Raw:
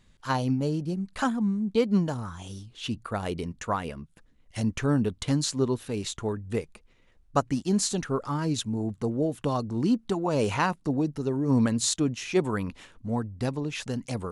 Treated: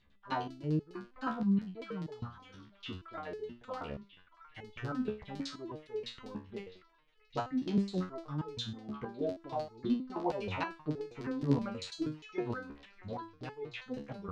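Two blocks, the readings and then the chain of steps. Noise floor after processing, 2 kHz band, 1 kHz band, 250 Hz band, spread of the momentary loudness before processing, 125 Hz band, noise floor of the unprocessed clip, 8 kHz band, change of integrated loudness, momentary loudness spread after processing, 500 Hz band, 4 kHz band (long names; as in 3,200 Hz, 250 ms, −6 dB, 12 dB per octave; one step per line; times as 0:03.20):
−65 dBFS, −9.5 dB, −8.5 dB, −9.5 dB, 9 LU, −11.0 dB, −61 dBFS, −25.5 dB, −10.0 dB, 14 LU, −10.0 dB, −10.5 dB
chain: auto-filter low-pass saw down 9.9 Hz 340–4,600 Hz
echo through a band-pass that steps 632 ms, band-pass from 1,600 Hz, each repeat 0.7 octaves, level −10.5 dB
step-sequenced resonator 6.3 Hz 71–430 Hz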